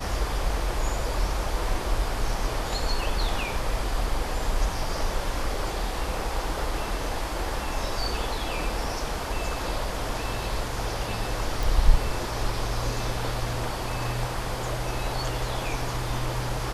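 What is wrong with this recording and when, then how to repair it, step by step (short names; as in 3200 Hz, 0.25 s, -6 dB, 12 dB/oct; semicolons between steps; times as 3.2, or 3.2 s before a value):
11.63 pop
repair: de-click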